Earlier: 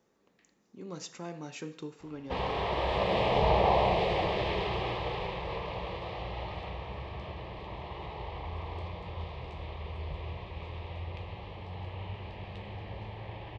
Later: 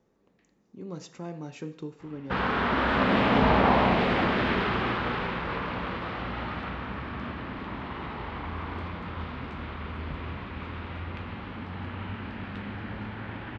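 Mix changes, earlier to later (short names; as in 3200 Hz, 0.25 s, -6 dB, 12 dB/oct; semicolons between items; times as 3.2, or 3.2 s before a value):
speech: add tilt -2 dB/oct; background: remove fixed phaser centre 600 Hz, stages 4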